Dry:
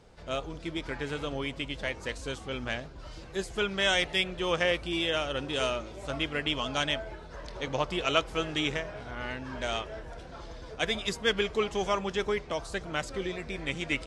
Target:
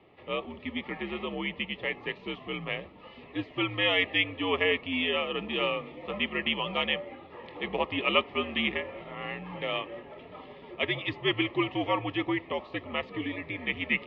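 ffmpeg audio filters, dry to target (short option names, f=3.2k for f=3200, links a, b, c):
-af "highpass=f=190:t=q:w=0.5412,highpass=f=190:t=q:w=1.307,lowpass=f=3k:t=q:w=0.5176,lowpass=f=3k:t=q:w=0.7071,lowpass=f=3k:t=q:w=1.932,afreqshift=-80,asuperstop=centerf=1500:order=4:qfactor=3.6,highshelf=f=2.2k:g=8.5"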